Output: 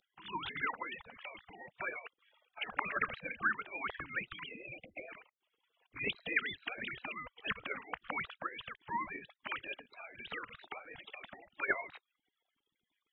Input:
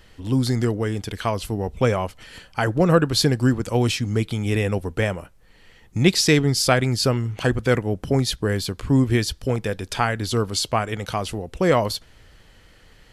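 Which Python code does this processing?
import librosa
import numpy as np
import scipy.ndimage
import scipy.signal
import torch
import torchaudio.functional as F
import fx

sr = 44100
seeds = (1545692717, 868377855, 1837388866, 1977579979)

y = fx.sine_speech(x, sr)
y = fx.spec_gate(y, sr, threshold_db=-25, keep='weak')
y = fx.brickwall_bandstop(y, sr, low_hz=780.0, high_hz=2000.0, at=(4.47, 5.07), fade=0.02)
y = F.gain(torch.from_numpy(y), 5.0).numpy()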